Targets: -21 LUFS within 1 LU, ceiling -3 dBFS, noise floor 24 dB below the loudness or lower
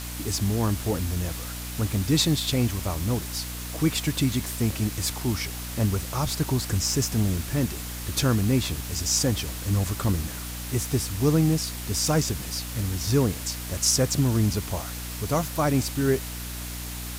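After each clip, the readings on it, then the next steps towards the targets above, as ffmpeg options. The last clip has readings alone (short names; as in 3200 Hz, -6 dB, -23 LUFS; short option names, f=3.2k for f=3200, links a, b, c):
hum 60 Hz; harmonics up to 300 Hz; hum level -34 dBFS; noise floor -35 dBFS; noise floor target -50 dBFS; loudness -26.0 LUFS; peak -9.5 dBFS; loudness target -21.0 LUFS
-> -af "bandreject=f=60:t=h:w=6,bandreject=f=120:t=h:w=6,bandreject=f=180:t=h:w=6,bandreject=f=240:t=h:w=6,bandreject=f=300:t=h:w=6"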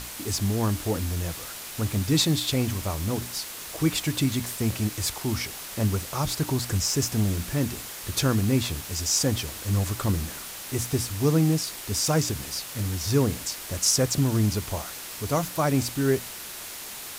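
hum none; noise floor -38 dBFS; noise floor target -51 dBFS
-> -af "afftdn=nr=13:nf=-38"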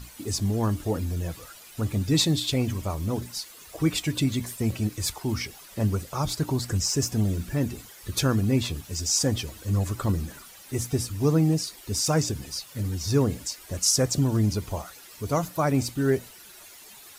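noise floor -48 dBFS; noise floor target -51 dBFS
-> -af "afftdn=nr=6:nf=-48"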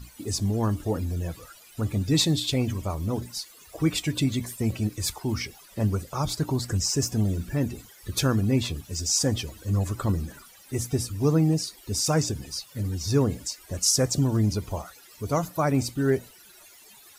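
noise floor -52 dBFS; loudness -26.5 LUFS; peak -10.0 dBFS; loudness target -21.0 LUFS
-> -af "volume=5.5dB"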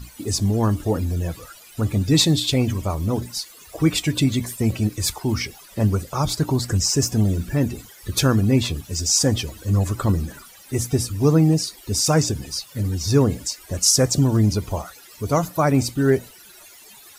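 loudness -21.0 LUFS; peak -4.5 dBFS; noise floor -46 dBFS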